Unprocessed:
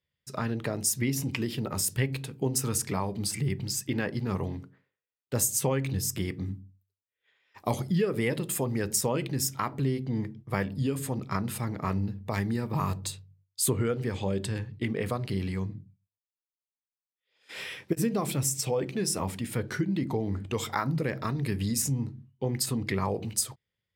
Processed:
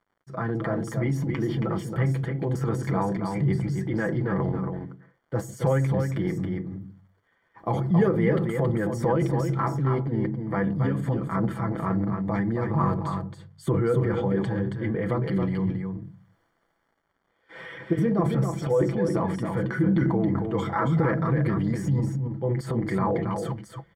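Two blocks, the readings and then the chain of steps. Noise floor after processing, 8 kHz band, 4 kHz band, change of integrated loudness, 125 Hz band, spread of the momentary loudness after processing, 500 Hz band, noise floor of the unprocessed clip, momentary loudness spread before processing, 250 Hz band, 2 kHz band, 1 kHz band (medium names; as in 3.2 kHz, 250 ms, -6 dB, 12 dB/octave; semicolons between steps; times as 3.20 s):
-72 dBFS, under -15 dB, under -10 dB, +4.0 dB, +6.0 dB, 9 LU, +5.5 dB, under -85 dBFS, 7 LU, +6.0 dB, +2.0 dB, +5.0 dB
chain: comb 6 ms, depth 74%; transient shaper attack -3 dB, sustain +8 dB; reverse; upward compressor, threshold -46 dBFS; reverse; bit crusher 12-bit; crackle 190 per s -52 dBFS; Savitzky-Golay filter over 41 samples; on a send: delay 274 ms -5.5 dB; on the sum: trim +2.5 dB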